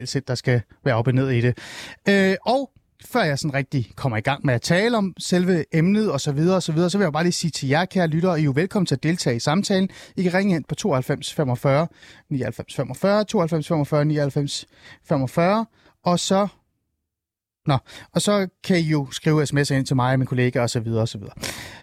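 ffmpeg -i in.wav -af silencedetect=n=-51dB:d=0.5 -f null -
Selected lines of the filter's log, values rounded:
silence_start: 16.57
silence_end: 17.66 | silence_duration: 1.09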